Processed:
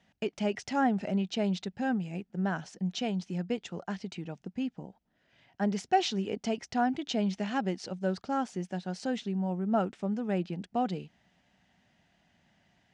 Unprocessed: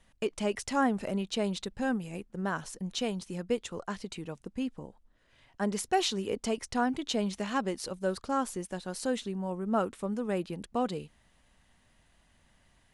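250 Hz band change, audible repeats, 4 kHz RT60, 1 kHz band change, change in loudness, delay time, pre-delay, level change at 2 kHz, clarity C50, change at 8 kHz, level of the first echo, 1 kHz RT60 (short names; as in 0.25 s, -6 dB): +2.0 dB, none, none, +1.5 dB, +0.5 dB, none, none, -1.0 dB, none, -6.5 dB, none, none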